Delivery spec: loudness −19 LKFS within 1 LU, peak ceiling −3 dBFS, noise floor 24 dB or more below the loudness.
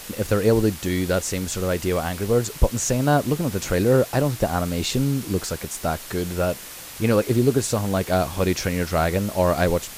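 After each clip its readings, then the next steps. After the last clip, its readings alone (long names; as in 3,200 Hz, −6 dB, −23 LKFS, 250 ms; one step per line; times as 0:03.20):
background noise floor −38 dBFS; target noise floor −47 dBFS; integrated loudness −22.5 LKFS; sample peak −4.0 dBFS; target loudness −19.0 LKFS
→ broadband denoise 9 dB, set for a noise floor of −38 dBFS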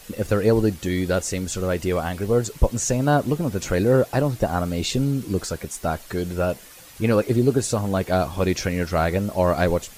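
background noise floor −45 dBFS; target noise floor −47 dBFS
→ broadband denoise 6 dB, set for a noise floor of −45 dBFS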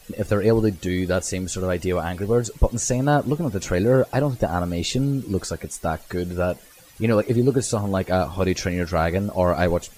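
background noise floor −48 dBFS; integrated loudness −22.5 LKFS; sample peak −4.0 dBFS; target loudness −19.0 LKFS
→ level +3.5 dB
brickwall limiter −3 dBFS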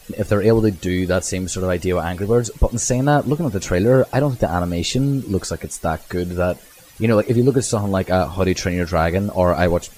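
integrated loudness −19.5 LKFS; sample peak −3.0 dBFS; background noise floor −45 dBFS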